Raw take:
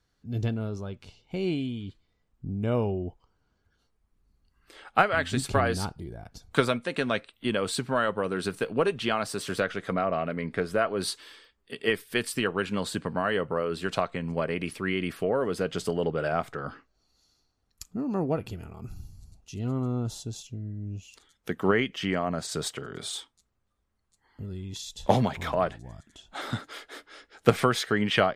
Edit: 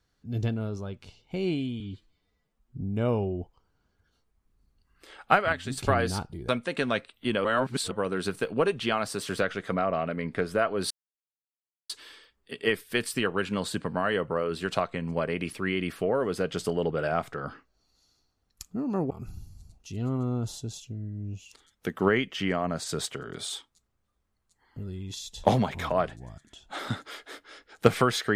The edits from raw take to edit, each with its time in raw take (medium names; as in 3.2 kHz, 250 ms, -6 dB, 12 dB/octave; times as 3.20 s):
1.80–2.47 s: stretch 1.5×
5.19–5.44 s: gain -6 dB
6.15–6.68 s: delete
7.64–8.11 s: reverse
11.10 s: insert silence 0.99 s
18.31–18.73 s: delete